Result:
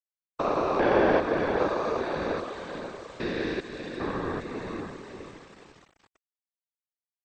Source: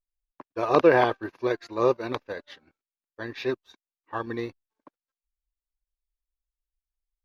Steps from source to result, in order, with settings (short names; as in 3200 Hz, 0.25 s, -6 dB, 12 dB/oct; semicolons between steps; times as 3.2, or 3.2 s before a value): stepped spectrum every 0.4 s; in parallel at +2.5 dB: compressor, threshold -35 dBFS, peak gain reduction 14 dB; 1.68–2.16 on the sum: HPF 550 Hz 24 dB/oct; on a send: diffused feedback echo 0.493 s, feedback 42%, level -6 dB; on the sum: sample gate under -47 dBFS; whisperiser; MP2 64 kbps 32000 Hz